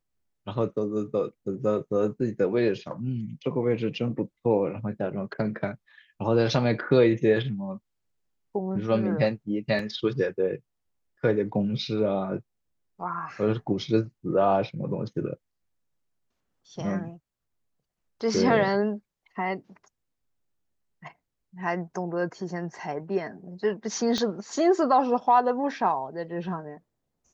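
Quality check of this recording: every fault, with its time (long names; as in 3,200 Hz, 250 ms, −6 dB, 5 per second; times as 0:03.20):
0:09.79: drop-out 3.1 ms
0:24.18: click −15 dBFS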